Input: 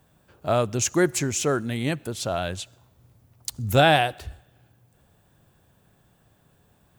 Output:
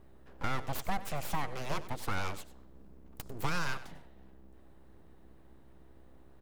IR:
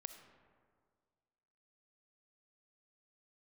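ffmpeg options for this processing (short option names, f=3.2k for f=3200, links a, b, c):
-filter_complex "[0:a]highshelf=f=2.2k:g=-12,bandreject=f=78.22:t=h:w=4,bandreject=f=156.44:t=h:w=4,bandreject=f=234.66:t=h:w=4,acrossover=split=250|810|2300[a][b][c][d];[a]acompressor=threshold=-44dB:ratio=6[e];[e][b][c][d]amix=inputs=4:normalize=0,alimiter=limit=-18dB:level=0:latency=1:release=371,acrossover=split=190|3000[f][g][h];[g]acompressor=threshold=-27dB:ratio=6[i];[f][i][h]amix=inputs=3:normalize=0,aeval=exprs='val(0)+0.002*(sin(2*PI*60*n/s)+sin(2*PI*2*60*n/s)/2+sin(2*PI*3*60*n/s)/3+sin(2*PI*4*60*n/s)/4+sin(2*PI*5*60*n/s)/5)':c=same,aeval=exprs='abs(val(0))':c=same,aecho=1:1:104:0.168,asetrate=48000,aresample=44100"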